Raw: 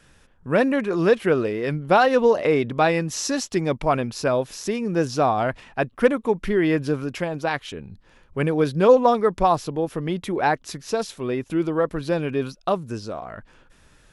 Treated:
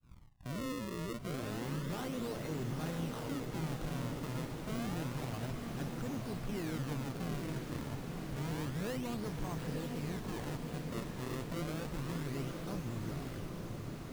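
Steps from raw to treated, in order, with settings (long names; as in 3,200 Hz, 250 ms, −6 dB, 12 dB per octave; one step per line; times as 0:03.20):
downward expander −49 dBFS
low-pass that shuts in the quiet parts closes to 2,800 Hz, open at −16 dBFS
guitar amp tone stack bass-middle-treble 6-0-2
amplitude modulation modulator 120 Hz, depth 75%
tube saturation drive 52 dB, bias 0.55
tilt shelving filter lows +7 dB, about 1,100 Hz
brickwall limiter −50.5 dBFS, peak gain reduction 8.5 dB
sample-and-hold swept by an LFO 32×, swing 160% 0.29 Hz
on a send: feedback delay with all-pass diffusion 904 ms, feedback 67%, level −4 dB
on the sum: level +16.5 dB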